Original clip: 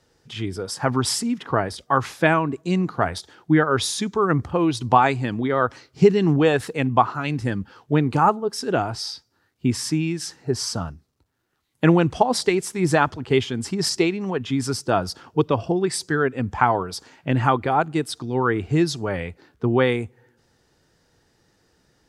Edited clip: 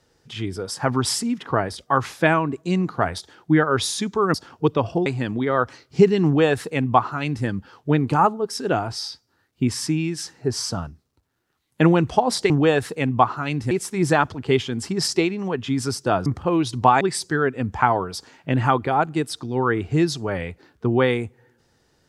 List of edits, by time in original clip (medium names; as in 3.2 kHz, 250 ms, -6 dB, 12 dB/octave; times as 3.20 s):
4.34–5.09 s: swap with 15.08–15.80 s
6.28–7.49 s: copy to 12.53 s